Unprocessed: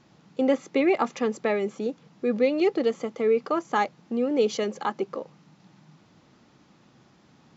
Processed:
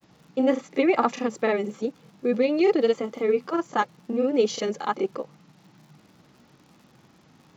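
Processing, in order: crackle 120/s -48 dBFS; grains, spray 32 ms, pitch spread up and down by 0 st; gain +2.5 dB

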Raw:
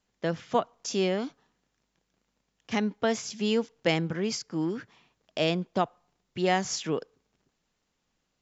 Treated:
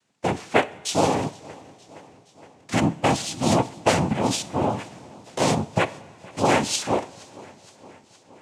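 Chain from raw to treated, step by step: noise vocoder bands 4; two-slope reverb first 0.49 s, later 4.1 s, from -18 dB, DRR 13.5 dB; warbling echo 0.467 s, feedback 67%, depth 63 cents, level -23.5 dB; gain +6 dB

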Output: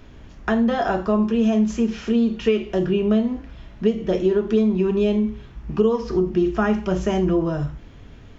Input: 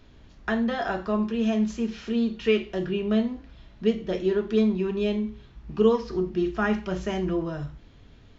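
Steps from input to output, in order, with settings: bell 4100 Hz -7 dB 0.59 oct; compressor 5:1, threshold -23 dBFS, peak gain reduction 9 dB; dynamic EQ 1900 Hz, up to -6 dB, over -48 dBFS, Q 1.4; gain +8.5 dB

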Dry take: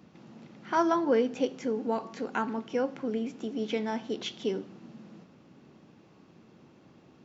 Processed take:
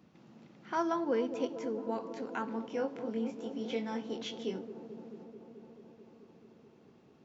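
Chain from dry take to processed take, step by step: 2.48–4.59 doubler 22 ms -4.5 dB; band-limited delay 0.218 s, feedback 80%, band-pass 410 Hz, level -10.5 dB; gain -6.5 dB

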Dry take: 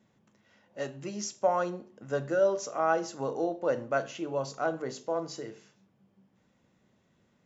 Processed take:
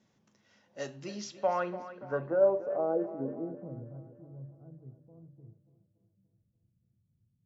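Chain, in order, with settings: low-pass sweep 5800 Hz -> 110 Hz, 0.94–4.03; tape echo 0.289 s, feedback 56%, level -13 dB, low-pass 4200 Hz; gain -3.5 dB

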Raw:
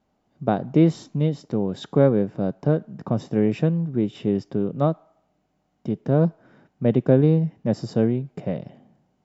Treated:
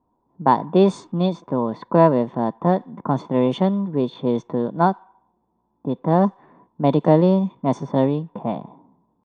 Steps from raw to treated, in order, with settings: pitch shift +3 st; low-pass opened by the level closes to 640 Hz, open at -14.5 dBFS; small resonant body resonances 1000/3500 Hz, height 17 dB, ringing for 30 ms; gain +1 dB

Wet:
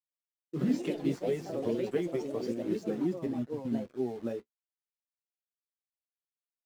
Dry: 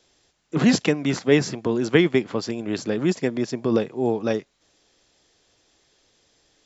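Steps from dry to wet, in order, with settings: 3.26–3.88 inverse Chebyshev low-pass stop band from 830 Hz, stop band 60 dB; compressor 6:1, threshold -23 dBFS, peak gain reduction 11.5 dB; bit-crush 6-bit; flange 0.59 Hz, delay 8.4 ms, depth 9.1 ms, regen -37%; echoes that change speed 0.158 s, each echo +3 st, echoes 3; spectral expander 1.5:1; gain -3 dB

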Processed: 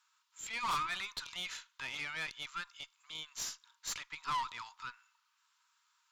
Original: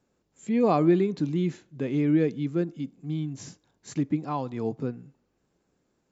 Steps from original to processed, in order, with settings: rippled Chebyshev high-pass 920 Hz, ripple 6 dB; tube stage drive 43 dB, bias 0.5; gain +12 dB

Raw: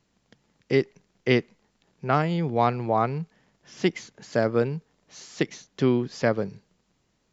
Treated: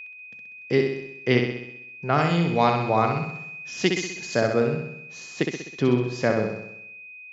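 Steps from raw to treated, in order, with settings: expander -55 dBFS; whine 2500 Hz -37 dBFS; 2.18–4.4 high shelf 3000 Hz +11 dB; flutter echo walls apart 11 m, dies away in 0.77 s

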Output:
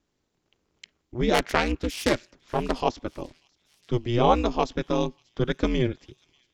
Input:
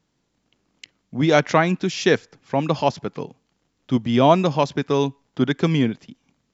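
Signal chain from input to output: 1.34–2.81 self-modulated delay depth 0.34 ms; ring modulator 120 Hz; thin delay 0.588 s, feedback 65%, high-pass 3600 Hz, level -22 dB; gain -2 dB

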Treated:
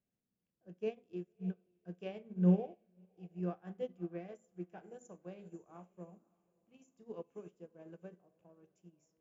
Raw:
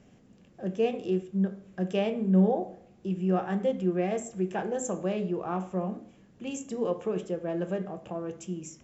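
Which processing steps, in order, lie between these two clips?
speed mistake 25 fps video run at 24 fps; on a send: diffused feedback echo 0.574 s, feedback 42%, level -15 dB; on the sum: upward expander 2.5:1, over -37 dBFS; gain -4.5 dB

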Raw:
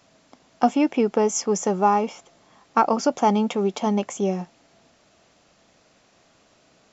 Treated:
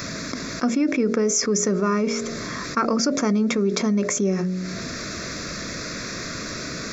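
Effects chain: fixed phaser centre 3000 Hz, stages 6; de-hum 45.96 Hz, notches 15; fast leveller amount 70%

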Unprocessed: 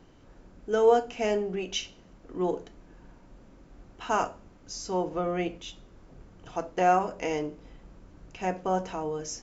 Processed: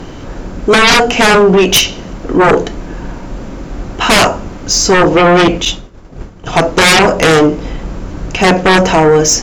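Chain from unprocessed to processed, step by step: 5.65–6.53 expander -42 dBFS; sine folder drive 18 dB, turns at -10 dBFS; gain +6.5 dB

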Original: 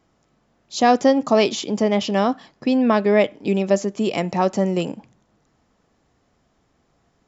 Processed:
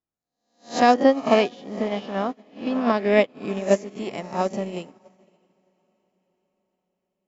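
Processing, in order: spectral swells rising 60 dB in 0.70 s; 0.94–2.81 LPF 3200 Hz 12 dB/oct; diffused feedback echo 0.58 s, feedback 52%, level -12.5 dB; upward expander 2.5:1, over -33 dBFS

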